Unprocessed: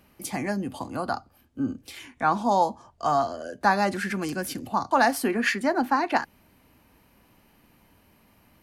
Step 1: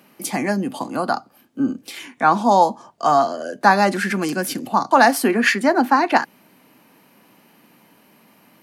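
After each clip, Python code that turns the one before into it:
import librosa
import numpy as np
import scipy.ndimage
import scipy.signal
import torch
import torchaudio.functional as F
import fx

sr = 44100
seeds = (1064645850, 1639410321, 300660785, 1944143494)

y = scipy.signal.sosfilt(scipy.signal.butter(4, 160.0, 'highpass', fs=sr, output='sos'), x)
y = F.gain(torch.from_numpy(y), 7.5).numpy()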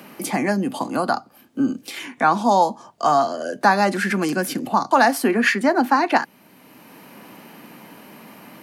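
y = fx.band_squash(x, sr, depth_pct=40)
y = F.gain(torch.from_numpy(y), -1.0).numpy()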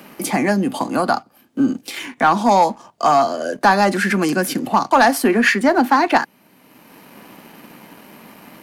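y = fx.leveller(x, sr, passes=1)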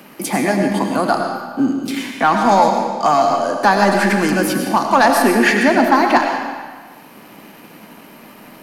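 y = fx.rev_freeverb(x, sr, rt60_s=1.5, hf_ratio=0.9, predelay_ms=60, drr_db=2.5)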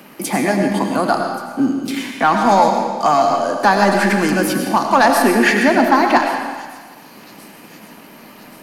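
y = fx.echo_wet_highpass(x, sr, ms=1128, feedback_pct=60, hz=4100.0, wet_db=-17.5)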